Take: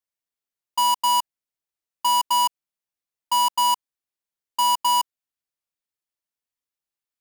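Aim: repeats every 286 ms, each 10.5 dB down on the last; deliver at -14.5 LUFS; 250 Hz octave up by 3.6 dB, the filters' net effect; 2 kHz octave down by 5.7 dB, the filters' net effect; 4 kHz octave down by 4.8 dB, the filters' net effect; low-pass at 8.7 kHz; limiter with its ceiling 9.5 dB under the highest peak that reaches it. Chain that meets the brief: low-pass 8.7 kHz; peaking EQ 250 Hz +4 dB; peaking EQ 2 kHz -6 dB; peaking EQ 4 kHz -4 dB; peak limiter -26.5 dBFS; feedback delay 286 ms, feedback 30%, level -10.5 dB; trim +19 dB

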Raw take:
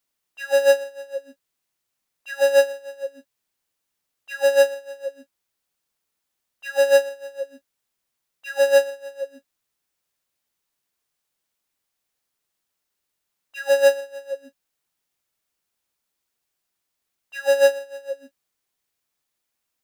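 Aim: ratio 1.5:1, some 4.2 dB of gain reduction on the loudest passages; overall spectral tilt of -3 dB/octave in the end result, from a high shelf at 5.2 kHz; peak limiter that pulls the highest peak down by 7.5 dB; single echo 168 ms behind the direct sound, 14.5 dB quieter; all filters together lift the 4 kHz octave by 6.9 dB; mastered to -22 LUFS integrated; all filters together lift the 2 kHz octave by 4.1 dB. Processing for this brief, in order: peaking EQ 2 kHz +3.5 dB; peaking EQ 4 kHz +4 dB; treble shelf 5.2 kHz +8 dB; compression 1.5:1, threshold -21 dBFS; peak limiter -16 dBFS; delay 168 ms -14.5 dB; trim +5.5 dB

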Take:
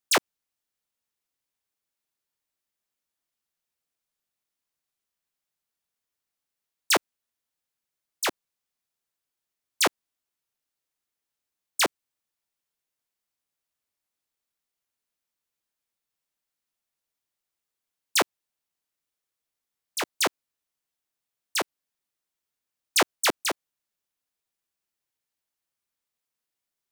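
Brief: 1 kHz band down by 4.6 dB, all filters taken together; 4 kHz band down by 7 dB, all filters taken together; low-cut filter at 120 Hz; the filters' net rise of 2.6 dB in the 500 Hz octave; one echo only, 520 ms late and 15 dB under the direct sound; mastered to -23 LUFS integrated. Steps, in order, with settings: high-pass 120 Hz; peaking EQ 500 Hz +5.5 dB; peaking EQ 1 kHz -7.5 dB; peaking EQ 4 kHz -9 dB; delay 520 ms -15 dB; trim +6 dB

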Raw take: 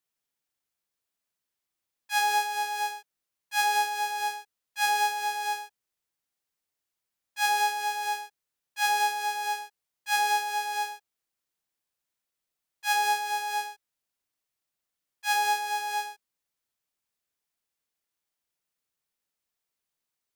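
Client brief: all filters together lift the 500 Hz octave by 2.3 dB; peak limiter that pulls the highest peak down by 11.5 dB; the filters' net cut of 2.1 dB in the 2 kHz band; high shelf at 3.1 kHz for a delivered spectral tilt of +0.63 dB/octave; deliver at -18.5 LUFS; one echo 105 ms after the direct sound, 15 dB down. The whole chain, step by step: peaking EQ 500 Hz +3 dB; peaking EQ 2 kHz -5.5 dB; treble shelf 3.1 kHz +7.5 dB; peak limiter -18.5 dBFS; delay 105 ms -15 dB; trim +13 dB

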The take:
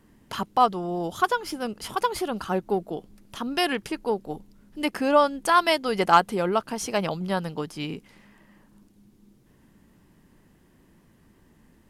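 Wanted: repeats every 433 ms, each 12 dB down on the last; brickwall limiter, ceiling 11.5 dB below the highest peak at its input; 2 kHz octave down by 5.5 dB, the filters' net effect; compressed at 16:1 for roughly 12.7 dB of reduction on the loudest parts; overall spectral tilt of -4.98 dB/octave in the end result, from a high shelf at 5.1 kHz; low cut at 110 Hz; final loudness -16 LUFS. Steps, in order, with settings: high-pass 110 Hz; peaking EQ 2 kHz -7 dB; treble shelf 5.1 kHz -5.5 dB; compression 16:1, threshold -26 dBFS; peak limiter -27 dBFS; feedback delay 433 ms, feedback 25%, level -12 dB; trim +21 dB

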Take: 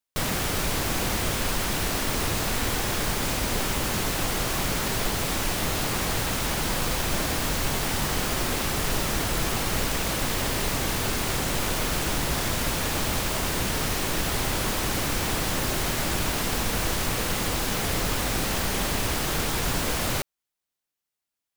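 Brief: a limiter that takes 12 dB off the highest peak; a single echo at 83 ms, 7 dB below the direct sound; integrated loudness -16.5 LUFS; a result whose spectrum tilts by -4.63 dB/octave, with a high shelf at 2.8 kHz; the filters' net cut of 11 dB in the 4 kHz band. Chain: treble shelf 2.8 kHz -8.5 dB; peaking EQ 4 kHz -7.5 dB; peak limiter -26.5 dBFS; delay 83 ms -7 dB; trim +19 dB

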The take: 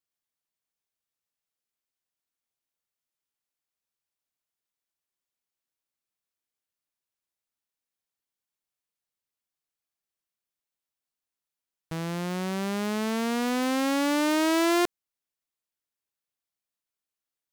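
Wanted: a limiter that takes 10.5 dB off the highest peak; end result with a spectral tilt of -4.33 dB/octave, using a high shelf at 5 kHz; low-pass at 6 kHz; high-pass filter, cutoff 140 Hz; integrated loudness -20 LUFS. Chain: high-pass 140 Hz; low-pass 6 kHz; treble shelf 5 kHz -3.5 dB; trim +15 dB; peak limiter -9.5 dBFS

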